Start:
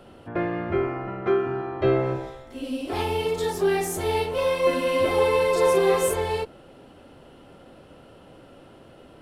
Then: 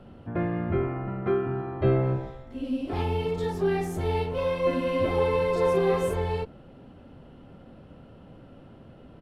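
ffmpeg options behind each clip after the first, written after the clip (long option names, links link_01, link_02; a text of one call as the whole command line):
ffmpeg -i in.wav -af "firequalizer=gain_entry='entry(220,0);entry(330,-8);entry(8400,-20)':delay=0.05:min_phase=1,volume=4.5dB" out.wav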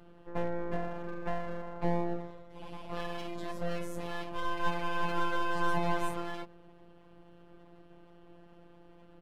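ffmpeg -i in.wav -af "afftfilt=real='hypot(re,im)*cos(PI*b)':imag='0':win_size=1024:overlap=0.75,aeval=exprs='abs(val(0))':channel_layout=same,volume=-2.5dB" out.wav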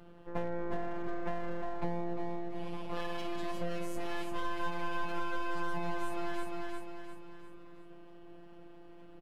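ffmpeg -i in.wav -filter_complex "[0:a]asplit=2[link_01][link_02];[link_02]aecho=0:1:351|702|1053|1404|1755:0.447|0.197|0.0865|0.0381|0.0167[link_03];[link_01][link_03]amix=inputs=2:normalize=0,acompressor=threshold=-29dB:ratio=6,volume=1dB" out.wav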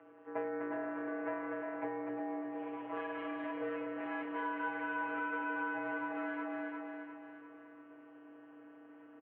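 ffmpeg -i in.wav -af "aecho=1:1:249:0.562,highpass=frequency=350:width_type=q:width=0.5412,highpass=frequency=350:width_type=q:width=1.307,lowpass=frequency=2400:width_type=q:width=0.5176,lowpass=frequency=2400:width_type=q:width=0.7071,lowpass=frequency=2400:width_type=q:width=1.932,afreqshift=-50,volume=1dB" out.wav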